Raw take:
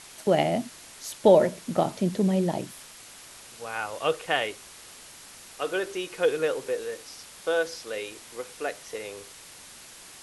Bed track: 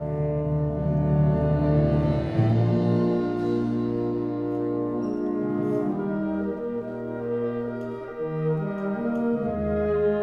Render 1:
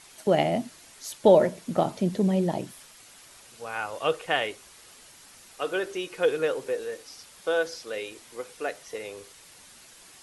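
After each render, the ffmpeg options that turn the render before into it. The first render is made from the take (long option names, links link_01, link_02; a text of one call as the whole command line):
ffmpeg -i in.wav -af "afftdn=noise_reduction=6:noise_floor=-48" out.wav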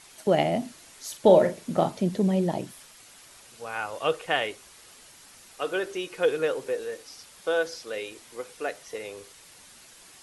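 ffmpeg -i in.wav -filter_complex "[0:a]asettb=1/sr,asplit=3[link_01][link_02][link_03];[link_01]atrim=end=0.584[link_04];[link_02]atrim=start=0.58:end=1.89,asetpts=PTS-STARTPTS,afade=type=in:duration=0.004:curve=qsin,afade=type=out:start_time=1.306:duration=0.004:curve=qsin,asplit=2[link_05][link_06];[link_06]adelay=42,volume=-9dB[link_07];[link_05][link_07]amix=inputs=2:normalize=0,atrim=end_sample=57771[link_08];[link_03]atrim=start=1.886[link_09];[link_04][link_08]acrossfade=duration=0.004:curve1=hsin:curve2=qsin[link_10];[link_10][link_09]acrossfade=duration=0.004:curve1=qsin:curve2=hsin" out.wav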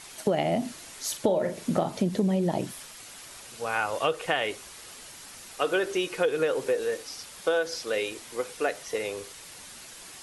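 ffmpeg -i in.wav -filter_complex "[0:a]asplit=2[link_01][link_02];[link_02]alimiter=limit=-17dB:level=0:latency=1:release=121,volume=-0.5dB[link_03];[link_01][link_03]amix=inputs=2:normalize=0,acompressor=threshold=-21dB:ratio=10" out.wav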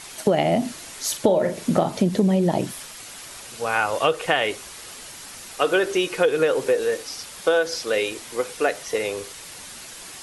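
ffmpeg -i in.wav -af "volume=6dB" out.wav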